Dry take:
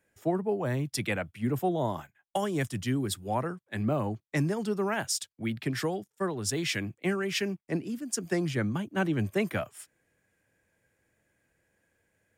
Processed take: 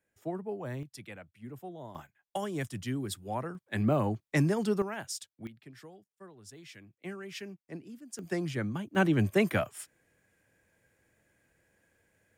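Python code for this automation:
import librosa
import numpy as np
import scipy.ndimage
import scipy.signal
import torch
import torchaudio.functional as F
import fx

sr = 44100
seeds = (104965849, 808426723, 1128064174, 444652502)

y = fx.gain(x, sr, db=fx.steps((0.0, -8.0), (0.83, -15.5), (1.95, -5.0), (3.55, 1.5), (4.82, -8.0), (5.47, -20.0), (7.0, -12.0), (8.19, -4.0), (8.95, 2.5)))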